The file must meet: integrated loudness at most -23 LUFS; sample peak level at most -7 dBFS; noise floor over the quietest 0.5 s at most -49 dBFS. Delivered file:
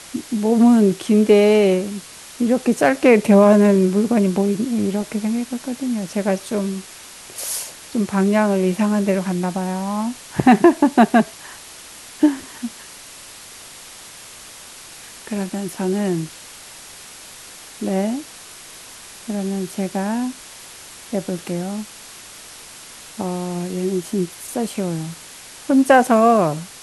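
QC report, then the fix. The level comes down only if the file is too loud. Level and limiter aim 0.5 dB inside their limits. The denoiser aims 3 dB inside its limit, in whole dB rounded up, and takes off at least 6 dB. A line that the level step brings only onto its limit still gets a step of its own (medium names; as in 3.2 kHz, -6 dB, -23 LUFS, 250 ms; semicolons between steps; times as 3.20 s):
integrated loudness -18.5 LUFS: fail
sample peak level -2.0 dBFS: fail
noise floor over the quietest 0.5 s -40 dBFS: fail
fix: noise reduction 7 dB, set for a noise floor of -40 dBFS; trim -5 dB; peak limiter -7.5 dBFS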